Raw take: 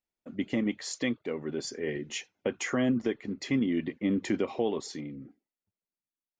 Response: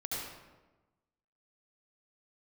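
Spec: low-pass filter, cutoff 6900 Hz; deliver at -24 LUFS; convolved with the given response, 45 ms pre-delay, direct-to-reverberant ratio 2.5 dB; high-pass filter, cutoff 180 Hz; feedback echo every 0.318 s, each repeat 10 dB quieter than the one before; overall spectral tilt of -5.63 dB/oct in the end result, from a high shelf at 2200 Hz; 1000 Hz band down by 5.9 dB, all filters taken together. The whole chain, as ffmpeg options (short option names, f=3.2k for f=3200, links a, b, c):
-filter_complex "[0:a]highpass=180,lowpass=6.9k,equalizer=f=1k:t=o:g=-7,highshelf=f=2.2k:g=-7.5,aecho=1:1:318|636|954|1272:0.316|0.101|0.0324|0.0104,asplit=2[a][b];[1:a]atrim=start_sample=2205,adelay=45[c];[b][c]afir=irnorm=-1:irlink=0,volume=-5.5dB[d];[a][d]amix=inputs=2:normalize=0,volume=7dB"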